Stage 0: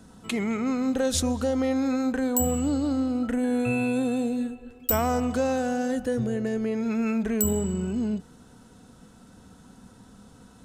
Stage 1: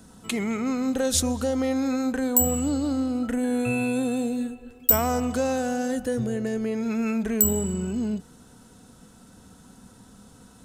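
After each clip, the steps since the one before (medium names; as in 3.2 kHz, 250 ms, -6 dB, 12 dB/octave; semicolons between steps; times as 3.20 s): treble shelf 6.8 kHz +8.5 dB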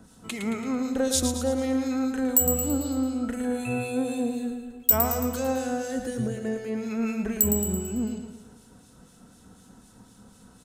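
harmonic tremolo 4 Hz, crossover 2 kHz; feedback delay 111 ms, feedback 50%, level -7 dB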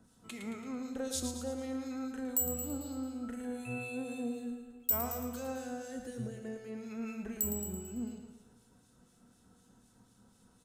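feedback comb 120 Hz, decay 0.84 s, harmonics all, mix 70%; trim -3 dB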